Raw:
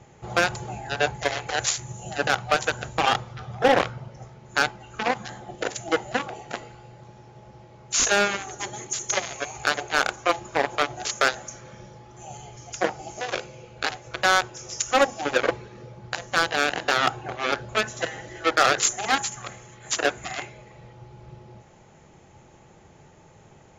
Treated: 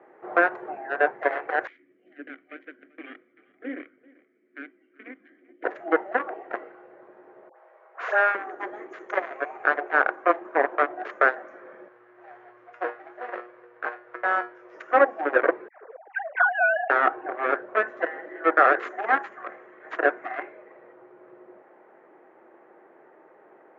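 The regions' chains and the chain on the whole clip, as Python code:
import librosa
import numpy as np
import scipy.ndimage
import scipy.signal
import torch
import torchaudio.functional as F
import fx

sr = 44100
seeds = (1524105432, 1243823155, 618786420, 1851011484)

y = fx.chain(x, sr, fx.vowel_filter(vowel='i'),
    fx.echo_single(ms=389, db=-22.5), at=(1.67, 5.64))
y = fx.chain(y, sr, fx.highpass(hz=560.0, slope=24),
    fx.dispersion(late='highs', ms=78.0, hz=1200.0), at=(7.49, 8.35))
y = fx.chain(y, sr, fx.halfwave_hold(),
    fx.peak_eq(hz=260.0, db=-9.5, octaves=1.8),
    fx.comb_fb(f0_hz=120.0, decay_s=0.27, harmonics='all', damping=0.0, mix_pct=80), at=(11.88, 14.74))
y = fx.chain(y, sr, fx.sine_speech(),
    fx.air_absorb(metres=76.0),
    fx.dispersion(late='lows', ms=89.0, hz=1200.0), at=(15.68, 16.9))
y = scipy.signal.sosfilt(scipy.signal.cheby1(3, 1.0, [320.0, 1800.0], 'bandpass', fs=sr, output='sos'), y)
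y = fx.notch(y, sr, hz=850.0, q=12.0)
y = y * 10.0 ** (3.0 / 20.0)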